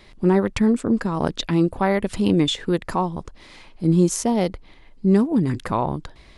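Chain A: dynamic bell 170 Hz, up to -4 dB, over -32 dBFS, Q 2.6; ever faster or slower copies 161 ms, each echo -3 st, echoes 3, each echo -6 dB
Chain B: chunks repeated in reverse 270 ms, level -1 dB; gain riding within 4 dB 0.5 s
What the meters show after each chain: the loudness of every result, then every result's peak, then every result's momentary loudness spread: -22.0 LUFS, -19.5 LUFS; -6.0 dBFS, -3.5 dBFS; 7 LU, 3 LU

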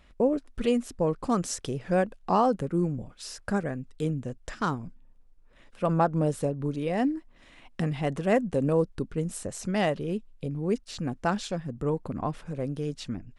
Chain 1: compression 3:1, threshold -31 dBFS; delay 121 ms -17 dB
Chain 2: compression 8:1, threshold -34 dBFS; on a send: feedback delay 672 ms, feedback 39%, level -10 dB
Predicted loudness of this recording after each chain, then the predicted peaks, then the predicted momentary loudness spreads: -35.5 LUFS, -39.0 LUFS; -17.0 dBFS, -17.0 dBFS; 5 LU, 5 LU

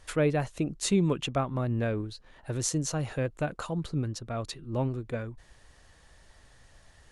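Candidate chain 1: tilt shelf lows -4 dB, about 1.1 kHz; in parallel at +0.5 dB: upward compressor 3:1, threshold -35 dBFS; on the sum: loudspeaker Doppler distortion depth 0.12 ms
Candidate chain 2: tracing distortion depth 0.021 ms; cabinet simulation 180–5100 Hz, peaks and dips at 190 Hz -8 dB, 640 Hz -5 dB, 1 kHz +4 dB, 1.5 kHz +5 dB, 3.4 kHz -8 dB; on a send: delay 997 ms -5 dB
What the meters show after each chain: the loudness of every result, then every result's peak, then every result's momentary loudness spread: -26.0 LUFS, -33.5 LUFS; -1.5 dBFS, -14.0 dBFS; 21 LU, 12 LU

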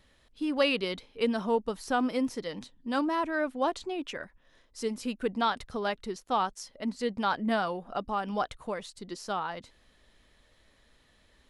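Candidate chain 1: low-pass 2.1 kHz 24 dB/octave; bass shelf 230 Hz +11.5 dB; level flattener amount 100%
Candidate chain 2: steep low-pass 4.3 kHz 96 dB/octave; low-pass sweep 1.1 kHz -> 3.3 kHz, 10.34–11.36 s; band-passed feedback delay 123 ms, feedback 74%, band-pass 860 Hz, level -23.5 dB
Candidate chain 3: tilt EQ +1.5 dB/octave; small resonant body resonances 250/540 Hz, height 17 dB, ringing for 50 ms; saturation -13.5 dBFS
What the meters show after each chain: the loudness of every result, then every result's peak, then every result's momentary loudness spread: -22.5 LUFS, -28.5 LUFS, -25.5 LUFS; -7.0 dBFS, -10.5 dBFS, -13.5 dBFS; 5 LU, 11 LU, 11 LU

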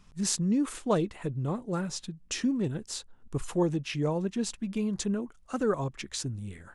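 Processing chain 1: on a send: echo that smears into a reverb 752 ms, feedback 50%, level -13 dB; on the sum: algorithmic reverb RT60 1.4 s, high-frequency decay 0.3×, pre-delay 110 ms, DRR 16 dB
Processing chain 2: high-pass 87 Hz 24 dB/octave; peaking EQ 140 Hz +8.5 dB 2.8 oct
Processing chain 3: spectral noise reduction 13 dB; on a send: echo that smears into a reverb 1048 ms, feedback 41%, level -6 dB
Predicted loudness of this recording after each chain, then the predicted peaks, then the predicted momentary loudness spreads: -31.0 LUFS, -25.5 LUFS, -32.0 LUFS; -12.0 dBFS, -10.5 dBFS, -12.0 dBFS; 8 LU, 9 LU, 7 LU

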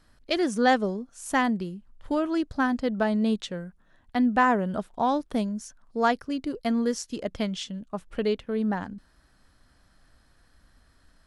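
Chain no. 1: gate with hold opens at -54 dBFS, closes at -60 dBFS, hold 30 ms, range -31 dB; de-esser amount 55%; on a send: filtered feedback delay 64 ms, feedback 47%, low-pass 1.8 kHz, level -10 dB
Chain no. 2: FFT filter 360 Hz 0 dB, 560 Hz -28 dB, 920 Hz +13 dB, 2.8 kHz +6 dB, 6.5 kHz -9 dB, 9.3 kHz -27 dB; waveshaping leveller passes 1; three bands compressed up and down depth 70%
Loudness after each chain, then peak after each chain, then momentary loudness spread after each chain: -26.5 LUFS, -21.0 LUFS; -8.0 dBFS, -4.0 dBFS; 13 LU, 22 LU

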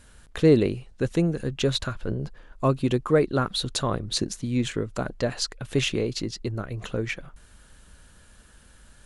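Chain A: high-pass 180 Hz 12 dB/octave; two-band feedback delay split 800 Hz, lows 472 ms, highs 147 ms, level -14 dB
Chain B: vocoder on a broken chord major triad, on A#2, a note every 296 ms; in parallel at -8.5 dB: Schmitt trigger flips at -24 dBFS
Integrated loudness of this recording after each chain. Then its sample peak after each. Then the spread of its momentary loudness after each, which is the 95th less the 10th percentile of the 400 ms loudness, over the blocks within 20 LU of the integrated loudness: -27.0 LUFS, -27.0 LUFS; -7.5 dBFS, -7.5 dBFS; 12 LU, 12 LU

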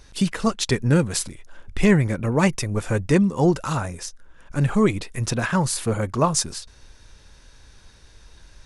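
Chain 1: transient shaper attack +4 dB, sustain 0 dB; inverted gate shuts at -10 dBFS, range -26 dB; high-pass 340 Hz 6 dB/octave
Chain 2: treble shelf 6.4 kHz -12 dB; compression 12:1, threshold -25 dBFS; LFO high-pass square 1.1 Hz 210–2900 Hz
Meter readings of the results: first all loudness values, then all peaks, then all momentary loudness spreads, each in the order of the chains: -32.5 LUFS, -31.0 LUFS; -6.5 dBFS, -13.5 dBFS; 14 LU, 16 LU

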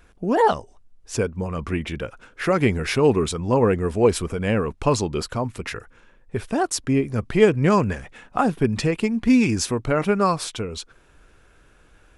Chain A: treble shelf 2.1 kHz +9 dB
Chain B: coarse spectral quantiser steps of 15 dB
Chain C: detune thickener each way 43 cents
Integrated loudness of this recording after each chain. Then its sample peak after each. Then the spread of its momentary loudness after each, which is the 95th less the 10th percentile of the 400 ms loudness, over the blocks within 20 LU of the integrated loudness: -20.5 LUFS, -22.5 LUFS, -26.0 LUFS; -2.0 dBFS, -3.0 dBFS, -7.0 dBFS; 12 LU, 13 LU, 13 LU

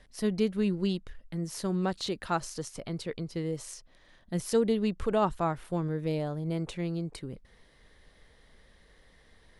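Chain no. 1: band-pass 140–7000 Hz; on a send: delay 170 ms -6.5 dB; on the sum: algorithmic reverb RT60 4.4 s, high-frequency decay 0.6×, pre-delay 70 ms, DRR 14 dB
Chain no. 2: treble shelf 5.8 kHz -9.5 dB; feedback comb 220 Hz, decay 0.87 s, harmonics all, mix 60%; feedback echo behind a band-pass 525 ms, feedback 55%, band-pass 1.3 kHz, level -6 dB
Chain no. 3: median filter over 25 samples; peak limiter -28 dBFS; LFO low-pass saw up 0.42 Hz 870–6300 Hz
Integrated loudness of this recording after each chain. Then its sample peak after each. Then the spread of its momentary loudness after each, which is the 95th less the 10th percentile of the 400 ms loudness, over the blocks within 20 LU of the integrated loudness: -31.5 LUFS, -39.0 LUFS, -37.5 LUFS; -13.5 dBFS, -21.5 dBFS, -21.5 dBFS; 12 LU, 14 LU, 7 LU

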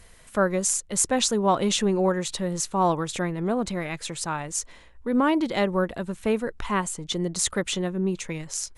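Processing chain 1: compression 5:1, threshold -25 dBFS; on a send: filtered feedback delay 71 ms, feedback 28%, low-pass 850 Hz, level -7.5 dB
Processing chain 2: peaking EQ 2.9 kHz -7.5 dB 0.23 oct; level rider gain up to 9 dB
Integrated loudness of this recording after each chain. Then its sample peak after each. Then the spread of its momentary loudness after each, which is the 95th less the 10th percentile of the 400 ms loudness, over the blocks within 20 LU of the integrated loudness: -29.5 LUFS, -18.5 LUFS; -9.5 dBFS, -1.0 dBFS; 5 LU, 8 LU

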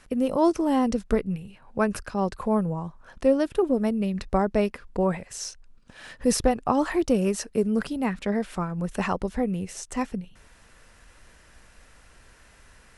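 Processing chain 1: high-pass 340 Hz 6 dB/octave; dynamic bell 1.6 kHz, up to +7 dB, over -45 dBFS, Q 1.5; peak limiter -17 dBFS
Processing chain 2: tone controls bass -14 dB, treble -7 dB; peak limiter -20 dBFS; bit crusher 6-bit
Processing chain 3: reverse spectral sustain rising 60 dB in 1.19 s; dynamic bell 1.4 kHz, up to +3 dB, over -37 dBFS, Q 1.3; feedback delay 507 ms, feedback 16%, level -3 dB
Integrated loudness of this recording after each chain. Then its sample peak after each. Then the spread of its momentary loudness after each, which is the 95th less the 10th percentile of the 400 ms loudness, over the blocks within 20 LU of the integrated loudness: -29.5 LUFS, -31.5 LUFS, -21.5 LUFS; -17.0 dBFS, -20.5 dBFS, -4.5 dBFS; 9 LU, 9 LU, 8 LU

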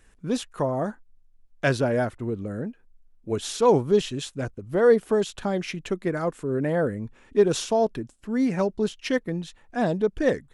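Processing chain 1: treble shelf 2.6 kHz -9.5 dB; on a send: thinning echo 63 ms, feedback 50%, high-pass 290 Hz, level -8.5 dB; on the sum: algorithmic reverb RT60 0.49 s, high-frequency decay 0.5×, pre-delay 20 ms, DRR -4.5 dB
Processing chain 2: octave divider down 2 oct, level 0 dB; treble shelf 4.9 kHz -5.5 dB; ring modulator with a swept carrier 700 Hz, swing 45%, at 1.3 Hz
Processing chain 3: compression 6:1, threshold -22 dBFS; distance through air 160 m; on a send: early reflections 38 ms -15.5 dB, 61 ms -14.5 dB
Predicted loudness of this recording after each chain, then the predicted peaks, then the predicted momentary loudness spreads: -20.0 LUFS, -27.0 LUFS, -29.5 LUFS; -2.0 dBFS, -7.0 dBFS, -14.5 dBFS; 12 LU, 11 LU, 7 LU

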